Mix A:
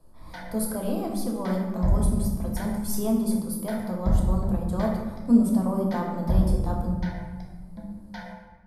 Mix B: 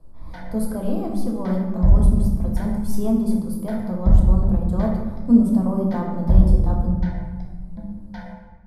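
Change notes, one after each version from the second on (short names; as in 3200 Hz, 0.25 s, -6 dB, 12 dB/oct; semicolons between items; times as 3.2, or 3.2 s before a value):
master: add tilt -2 dB/oct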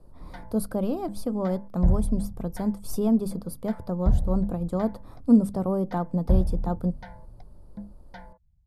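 speech +3.5 dB; reverb: off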